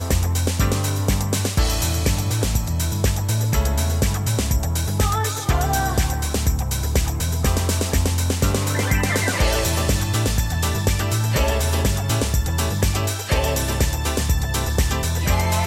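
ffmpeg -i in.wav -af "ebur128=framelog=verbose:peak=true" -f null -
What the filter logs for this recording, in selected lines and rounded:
Integrated loudness:
  I:         -21.0 LUFS
  Threshold: -31.0 LUFS
Loudness range:
  LRA:         1.1 LU
  Threshold: -41.0 LUFS
  LRA low:   -21.4 LUFS
  LRA high:  -20.4 LUFS
True peak:
  Peak:       -6.4 dBFS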